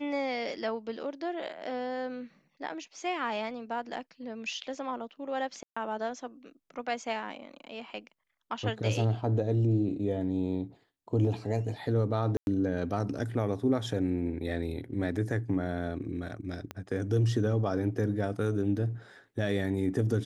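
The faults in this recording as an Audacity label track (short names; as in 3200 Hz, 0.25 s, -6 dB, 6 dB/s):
5.630000	5.760000	gap 0.135 s
12.370000	12.470000	gap 0.101 s
16.710000	16.710000	pop -22 dBFS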